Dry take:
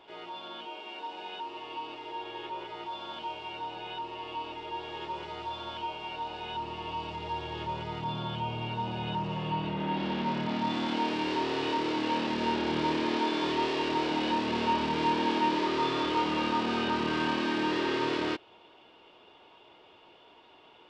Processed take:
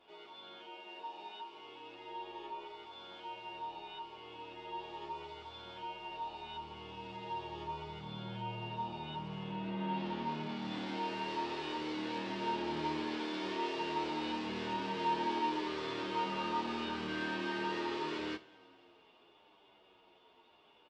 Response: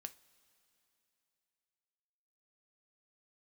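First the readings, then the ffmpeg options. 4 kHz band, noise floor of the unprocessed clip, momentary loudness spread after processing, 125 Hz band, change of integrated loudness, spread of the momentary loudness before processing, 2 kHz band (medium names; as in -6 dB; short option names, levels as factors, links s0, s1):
-8.5 dB, -57 dBFS, 12 LU, -8.5 dB, -8.0 dB, 11 LU, -7.5 dB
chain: -filter_complex "[1:a]atrim=start_sample=2205[s0];[0:a][s0]afir=irnorm=-1:irlink=0,asplit=2[s1][s2];[s2]adelay=9.4,afreqshift=-0.78[s3];[s1][s3]amix=inputs=2:normalize=1"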